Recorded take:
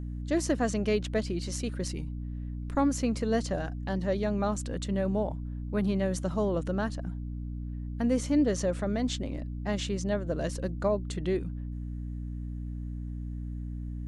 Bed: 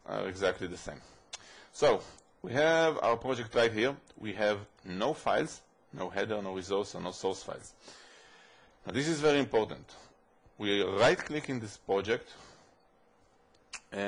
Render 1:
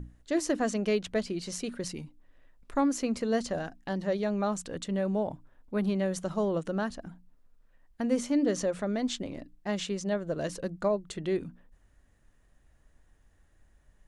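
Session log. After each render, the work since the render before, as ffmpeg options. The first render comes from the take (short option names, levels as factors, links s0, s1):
-af "bandreject=f=60:t=h:w=6,bandreject=f=120:t=h:w=6,bandreject=f=180:t=h:w=6,bandreject=f=240:t=h:w=6,bandreject=f=300:t=h:w=6"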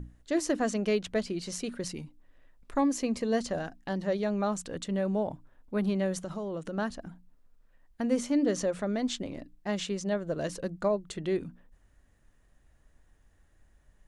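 -filter_complex "[0:a]asettb=1/sr,asplit=3[s0][s1][s2];[s0]atrim=end=2.784[s3];[s1]atrim=start=2.78:end=3.37,asetpts=PTS-STARTPTS,afade=t=in:d=0.004:c=qsin,afade=t=out:st=0.586:d=0.004:c=qsin,asuperstop=centerf=1400:order=4:qfactor=6.2[s4];[s2]atrim=start=3.366[s5];[s3][s4]acrossfade=d=0.004:c1=hsin:c2=qsin[s6];[s6][s5]acrossfade=d=0.004:c1=qsin:c2=hsin,asettb=1/sr,asplit=3[s7][s8][s9];[s7]atrim=end=6.174[s10];[s8]atrim=start=6.17:end=6.78,asetpts=PTS-STARTPTS,afade=t=in:d=0.004:c=qsin,afade=t=out:st=0.606:d=0.004:c=qsin,acompressor=threshold=0.0251:ratio=6:attack=3.2:release=140:knee=1:detection=peak[s11];[s9]atrim=start=6.776[s12];[s10][s11]acrossfade=d=0.004:c1=hsin:c2=qsin[s13];[s13][s12]acrossfade=d=0.004:c1=qsin:c2=hsin"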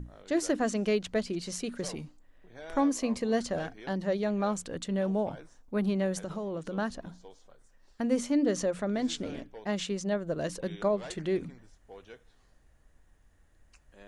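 -filter_complex "[1:a]volume=0.112[s0];[0:a][s0]amix=inputs=2:normalize=0"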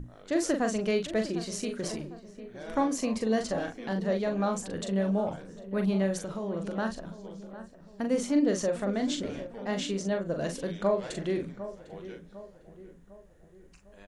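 -filter_complex "[0:a]asplit=2[s0][s1];[s1]adelay=41,volume=0.501[s2];[s0][s2]amix=inputs=2:normalize=0,asplit=2[s3][s4];[s4]adelay=752,lowpass=f=1500:p=1,volume=0.224,asplit=2[s5][s6];[s6]adelay=752,lowpass=f=1500:p=1,volume=0.49,asplit=2[s7][s8];[s8]adelay=752,lowpass=f=1500:p=1,volume=0.49,asplit=2[s9][s10];[s10]adelay=752,lowpass=f=1500:p=1,volume=0.49,asplit=2[s11][s12];[s12]adelay=752,lowpass=f=1500:p=1,volume=0.49[s13];[s3][s5][s7][s9][s11][s13]amix=inputs=6:normalize=0"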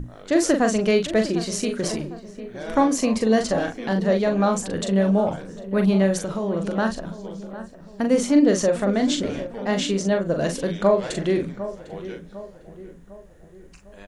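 -af "volume=2.66"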